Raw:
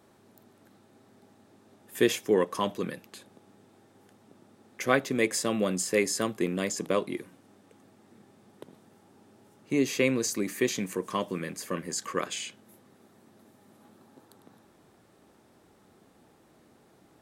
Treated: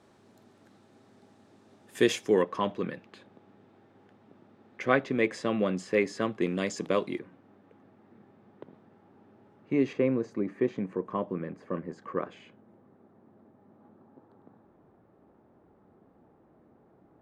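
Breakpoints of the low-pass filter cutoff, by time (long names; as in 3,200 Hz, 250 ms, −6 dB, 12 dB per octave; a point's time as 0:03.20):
7,400 Hz
from 0:02.42 2,800 Hz
from 0:06.42 5,000 Hz
from 0:07.19 2,000 Hz
from 0:09.93 1,100 Hz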